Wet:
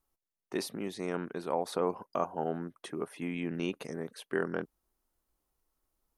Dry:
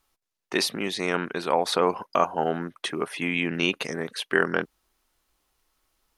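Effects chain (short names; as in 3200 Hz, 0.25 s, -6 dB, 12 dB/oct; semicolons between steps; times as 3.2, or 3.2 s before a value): bell 3000 Hz -12 dB 2.9 oct; gain -5.5 dB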